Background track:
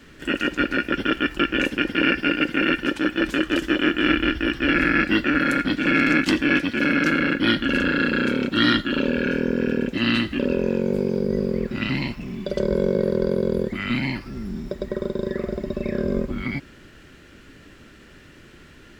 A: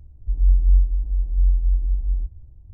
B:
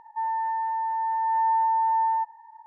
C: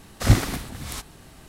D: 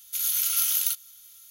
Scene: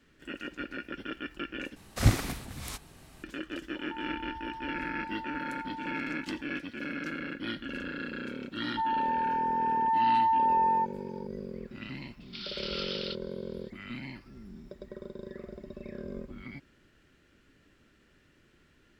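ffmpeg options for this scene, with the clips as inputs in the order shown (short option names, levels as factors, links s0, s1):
-filter_complex "[2:a]asplit=2[s0][s1];[0:a]volume=0.15[s2];[3:a]equalizer=f=2400:w=5.2:g=2.5[s3];[s0]acompressor=threshold=0.0158:ratio=6:attack=3.2:release=140:knee=1:detection=peak[s4];[4:a]aresample=11025,aresample=44100[s5];[s2]asplit=2[s6][s7];[s6]atrim=end=1.764[s8];[s3]atrim=end=1.48,asetpts=PTS-STARTPTS,volume=0.501[s9];[s7]atrim=start=3.236[s10];[s4]atrim=end=2.66,asetpts=PTS-STARTPTS,volume=0.531,afade=t=in:d=0.004:c=hsin,afade=t=out:st=2.656:d=0.004:c=hsin,adelay=3750[s11];[s1]atrim=end=2.66,asetpts=PTS-STARTPTS,volume=0.794,afade=t=in:d=0.004:c=hsin,afade=t=out:st=2.656:d=0.004:c=hsin,adelay=8610[s12];[s5]atrim=end=1.5,asetpts=PTS-STARTPTS,volume=0.944,afade=t=in:d=0.004:c=hsin,afade=t=out:st=1.496:d=0.004:c=hsin,adelay=538020S[s13];[s8][s9]acrossfade=d=0.004:c1=hsin:c2=hsin[s14];[s14][s10]acrossfade=d=0.004:c1=hsin:c2=hsin[s15];[s15][s11][s12][s13]amix=inputs=4:normalize=0"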